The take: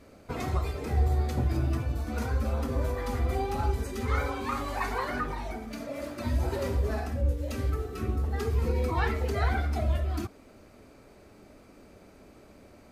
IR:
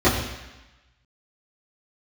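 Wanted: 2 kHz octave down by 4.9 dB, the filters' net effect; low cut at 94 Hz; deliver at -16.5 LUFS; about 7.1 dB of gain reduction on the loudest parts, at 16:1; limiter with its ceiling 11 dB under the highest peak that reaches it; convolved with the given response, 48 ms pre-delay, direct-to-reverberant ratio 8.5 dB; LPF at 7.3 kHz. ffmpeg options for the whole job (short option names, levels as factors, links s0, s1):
-filter_complex "[0:a]highpass=94,lowpass=7300,equalizer=f=2000:t=o:g=-6.5,acompressor=threshold=0.0224:ratio=16,alimiter=level_in=3.98:limit=0.0631:level=0:latency=1,volume=0.251,asplit=2[s0][s1];[1:a]atrim=start_sample=2205,adelay=48[s2];[s1][s2]afir=irnorm=-1:irlink=0,volume=0.0335[s3];[s0][s3]amix=inputs=2:normalize=0,volume=16.8"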